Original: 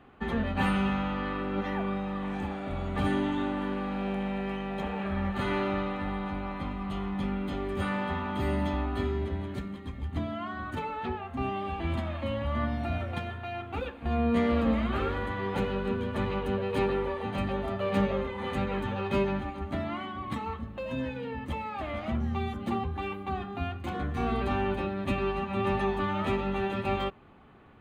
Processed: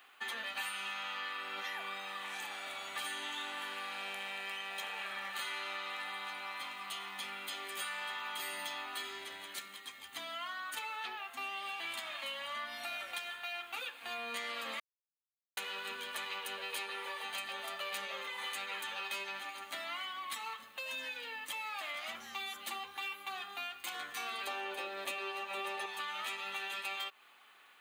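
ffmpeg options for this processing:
ffmpeg -i in.wav -filter_complex "[0:a]asettb=1/sr,asplit=3[link_01][link_02][link_03];[link_01]atrim=end=24.474[link_04];[link_02]atrim=start=24.47:end=25.86,asetpts=PTS-STARTPTS,afade=type=in:duration=0.004:curve=qsin,afade=type=out:start_time=1.386:duration=0.004:curve=qsin,equalizer=frequency=480:width=1.1:gain=13.5[link_05];[link_03]atrim=start=25.856[link_06];[link_04][link_05]acrossfade=duration=0.004:curve1=hsin:curve2=qsin[link_07];[link_07][link_06]acrossfade=duration=0.004:curve1=qsin:curve2=hsin,asplit=3[link_08][link_09][link_10];[link_08]atrim=end=14.8,asetpts=PTS-STARTPTS,afade=type=out:start_time=14.796:duration=0.004:curve=hsin[link_11];[link_09]atrim=start=14.8:end=15.57,asetpts=PTS-STARTPTS,volume=0[link_12];[link_10]atrim=start=15.57,asetpts=PTS-STARTPTS,afade=type=in:duration=0.004:curve=hsin[link_13];[link_11][link_12][link_13]concat=n=3:v=0:a=1,highpass=frequency=1000:poles=1,aderivative,acompressor=threshold=-52dB:ratio=6,volume=15dB" out.wav

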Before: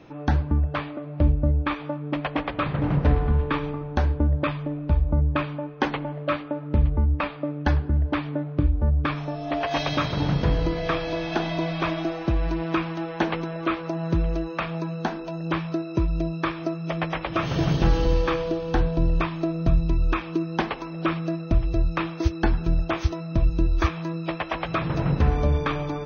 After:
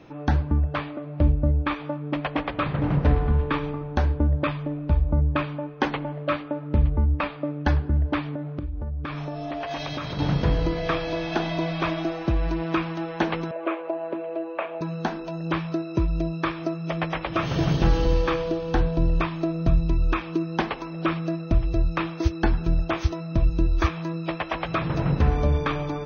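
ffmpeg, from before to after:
ffmpeg -i in.wav -filter_complex "[0:a]asettb=1/sr,asplit=3[link_01][link_02][link_03];[link_01]atrim=end=8.354[link_04];[link_02]atrim=start=8.35:end=10.19,asetpts=PTS-STARTPTS,afade=type=in:duration=0.004:curve=qsin,afade=type=out:start_time=1.836:duration=0.004:curve=qsin,acompressor=threshold=-27dB:ratio=6:attack=3.2:release=140:knee=1:detection=peak[link_05];[link_03]atrim=start=10.186[link_06];[link_04][link_05]acrossfade=duration=0.004:curve1=hsin:curve2=qsin[link_07];[link_07][link_06]acrossfade=duration=0.004:curve1=qsin:curve2=hsin,asettb=1/sr,asplit=3[link_08][link_09][link_10];[link_08]atrim=end=13.514[link_11];[link_09]atrim=start=13.51:end=14.81,asetpts=PTS-STARTPTS,afade=type=in:duration=0.004:curve=qsin,afade=type=out:start_time=1.296:duration=0.004:curve=qsin,highpass=frequency=330:width=0.5412,highpass=frequency=330:width=1.3066,equalizer=frequency=610:width_type=q:width=4:gain=7,equalizer=frequency=1300:width_type=q:width=4:gain=-6,equalizer=frequency=1900:width_type=q:width=4:gain=-5,lowpass=frequency=2600:width=0.5412,lowpass=frequency=2600:width=1.3066[link_12];[link_10]atrim=start=14.806[link_13];[link_11][link_12]acrossfade=duration=0.004:curve1=hsin:curve2=qsin[link_14];[link_14][link_13]acrossfade=duration=0.004:curve1=qsin:curve2=hsin" out.wav

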